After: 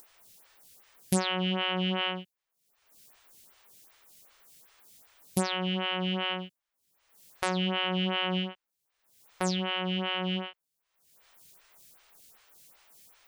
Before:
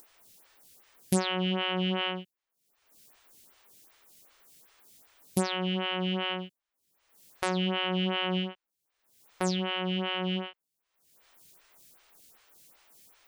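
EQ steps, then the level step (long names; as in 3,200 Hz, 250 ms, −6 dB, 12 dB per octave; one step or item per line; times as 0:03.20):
parametric band 310 Hz −4 dB 1.1 octaves
+1.0 dB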